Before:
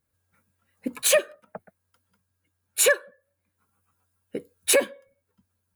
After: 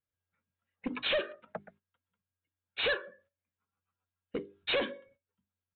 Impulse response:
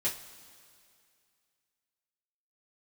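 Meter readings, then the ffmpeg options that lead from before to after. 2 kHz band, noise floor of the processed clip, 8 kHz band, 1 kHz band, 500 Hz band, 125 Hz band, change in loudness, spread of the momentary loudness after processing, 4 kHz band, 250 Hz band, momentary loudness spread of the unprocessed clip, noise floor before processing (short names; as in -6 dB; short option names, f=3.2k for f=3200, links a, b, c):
-7.5 dB, under -85 dBFS, under -40 dB, -5.0 dB, -10.5 dB, n/a, -12.0 dB, 16 LU, -4.5 dB, -4.5 dB, 18 LU, -78 dBFS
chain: -af "highshelf=f=2.7k:g=6.5,bandreject=f=50:t=h:w=6,bandreject=f=100:t=h:w=6,bandreject=f=150:t=h:w=6,bandreject=f=200:t=h:w=6,bandreject=f=250:t=h:w=6,bandreject=f=300:t=h:w=6,bandreject=f=350:t=h:w=6,bandreject=f=400:t=h:w=6,agate=range=-16dB:threshold=-59dB:ratio=16:detection=peak,aresample=8000,asoftclip=type=tanh:threshold=-26.5dB,aresample=44100"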